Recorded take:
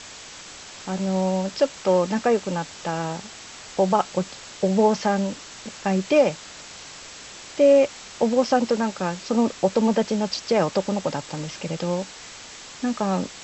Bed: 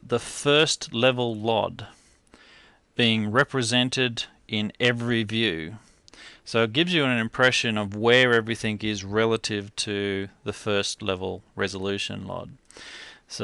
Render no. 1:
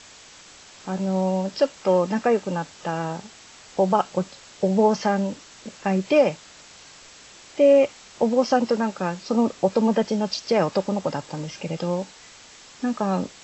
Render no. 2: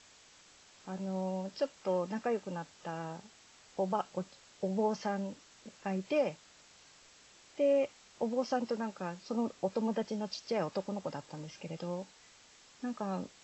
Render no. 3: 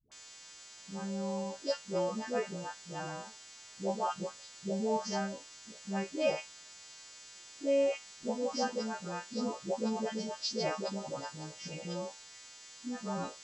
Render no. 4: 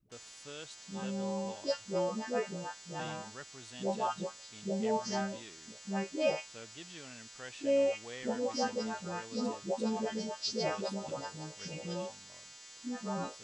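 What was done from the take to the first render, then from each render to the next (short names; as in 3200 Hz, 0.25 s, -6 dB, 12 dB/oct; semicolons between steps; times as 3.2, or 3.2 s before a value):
noise print and reduce 6 dB
gain -13 dB
frequency quantiser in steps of 2 st; dispersion highs, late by 0.118 s, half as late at 450 Hz
add bed -28 dB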